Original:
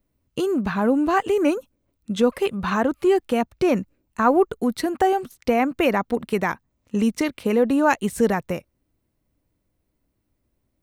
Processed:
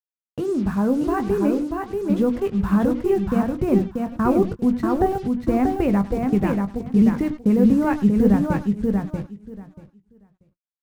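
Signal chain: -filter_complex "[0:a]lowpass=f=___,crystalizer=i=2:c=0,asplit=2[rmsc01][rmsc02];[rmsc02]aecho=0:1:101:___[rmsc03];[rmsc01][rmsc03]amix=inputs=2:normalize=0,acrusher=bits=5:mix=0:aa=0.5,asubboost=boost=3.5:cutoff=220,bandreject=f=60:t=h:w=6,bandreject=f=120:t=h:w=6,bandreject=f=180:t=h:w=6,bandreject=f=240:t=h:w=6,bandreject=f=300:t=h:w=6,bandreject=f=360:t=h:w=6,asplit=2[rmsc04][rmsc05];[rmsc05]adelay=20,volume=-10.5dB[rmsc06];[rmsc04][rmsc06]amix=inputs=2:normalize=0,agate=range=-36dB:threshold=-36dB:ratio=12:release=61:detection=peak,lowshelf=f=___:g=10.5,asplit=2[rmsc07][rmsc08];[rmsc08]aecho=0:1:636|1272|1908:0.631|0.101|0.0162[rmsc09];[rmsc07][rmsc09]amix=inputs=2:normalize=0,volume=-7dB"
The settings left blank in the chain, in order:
1600, 0.15, 430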